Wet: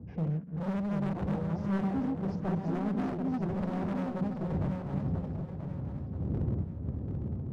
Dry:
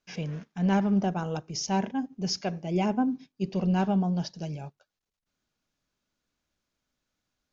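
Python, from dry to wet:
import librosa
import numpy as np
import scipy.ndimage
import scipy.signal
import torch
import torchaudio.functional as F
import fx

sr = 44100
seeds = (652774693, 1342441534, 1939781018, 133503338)

p1 = fx.reverse_delay(x, sr, ms=227, wet_db=-3.0)
p2 = fx.dmg_wind(p1, sr, seeds[0], corner_hz=150.0, level_db=-39.0)
p3 = scipy.signal.sosfilt(scipy.signal.bessel(2, 810.0, 'lowpass', norm='mag', fs=sr, output='sos'), p2)
p4 = fx.level_steps(p3, sr, step_db=13)
p5 = p3 + (p4 * 10.0 ** (-2.5 / 20.0))
p6 = scipy.signal.sosfilt(scipy.signal.butter(4, 69.0, 'highpass', fs=sr, output='sos'), p5)
p7 = fx.low_shelf(p6, sr, hz=350.0, db=10.0)
p8 = np.clip(10.0 ** (20.0 / 20.0) * p7, -1.0, 1.0) / 10.0 ** (20.0 / 20.0)
p9 = fx.rider(p8, sr, range_db=4, speed_s=0.5)
p10 = fx.hum_notches(p9, sr, base_hz=60, count=3)
p11 = fx.echo_swing(p10, sr, ms=982, ratio=3, feedback_pct=35, wet_db=-5.5)
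p12 = fx.doppler_dist(p11, sr, depth_ms=0.33)
y = p12 * 10.0 ** (-8.5 / 20.0)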